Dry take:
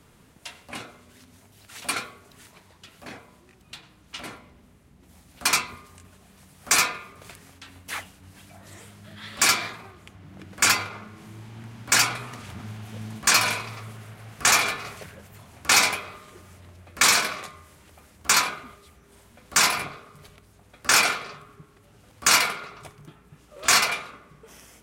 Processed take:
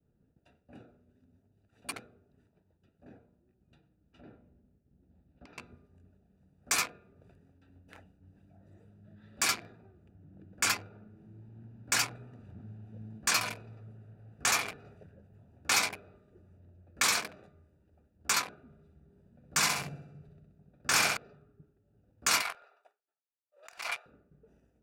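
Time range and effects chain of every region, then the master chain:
4.21–5.58 s: low-pass 4.5 kHz 24 dB/octave + compression 5:1, threshold -32 dBFS
18.66–21.17 s: peaking EQ 150 Hz +11 dB 0.51 oct + flutter echo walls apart 11 m, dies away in 0.84 s
22.42–24.06 s: high-pass 670 Hz 24 dB/octave + compressor with a negative ratio -26 dBFS
whole clip: local Wiener filter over 41 samples; expander -52 dBFS; trim -8.5 dB

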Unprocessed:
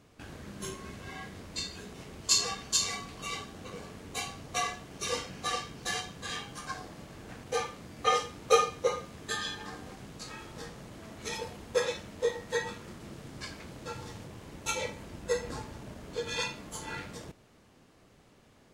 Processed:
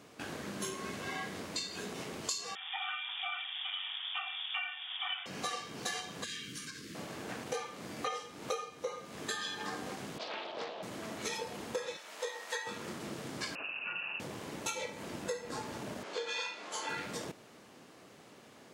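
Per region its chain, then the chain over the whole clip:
2.55–5.26 s: frequency inversion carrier 3.5 kHz + brick-wall FIR high-pass 700 Hz
6.24–6.95 s: compression, threshold -42 dBFS + Butterworth band-stop 780 Hz, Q 0.52
10.18–10.83 s: cabinet simulation 420–3700 Hz, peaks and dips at 660 Hz +10 dB, 1.3 kHz -6 dB, 2 kHz -8 dB, 3.3 kHz +6 dB + loudspeaker Doppler distortion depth 0.46 ms
11.97–12.67 s: high-pass 760 Hz + doubling 16 ms -12 dB
13.55–14.20 s: one-bit delta coder 32 kbps, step -52.5 dBFS + high-order bell 640 Hz -12.5 dB 1.3 oct + frequency inversion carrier 2.8 kHz
16.03–16.89 s: band-pass 490–5900 Hz + doubling 30 ms -4.5 dB
whole clip: Bessel high-pass 230 Hz, order 2; compression 12:1, threshold -41 dBFS; trim +6.5 dB

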